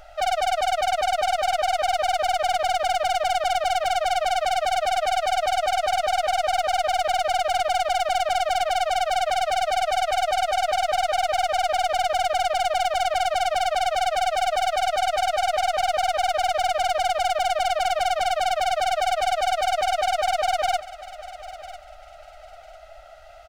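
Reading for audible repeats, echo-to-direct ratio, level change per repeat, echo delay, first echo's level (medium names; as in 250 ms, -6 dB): 2, -16.0 dB, -12.5 dB, 999 ms, -16.5 dB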